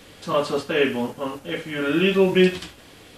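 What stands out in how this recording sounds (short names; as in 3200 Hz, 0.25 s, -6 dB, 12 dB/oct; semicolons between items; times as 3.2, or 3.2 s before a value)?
noise floor -48 dBFS; spectral tilt -4.0 dB/oct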